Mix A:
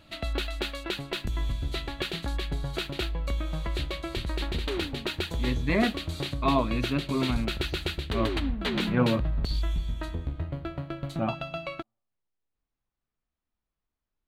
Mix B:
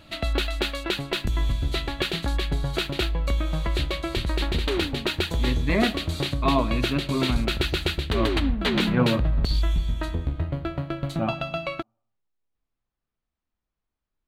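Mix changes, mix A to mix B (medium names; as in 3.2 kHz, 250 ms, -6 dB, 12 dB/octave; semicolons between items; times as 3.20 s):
speech: send +11.5 dB; background +5.5 dB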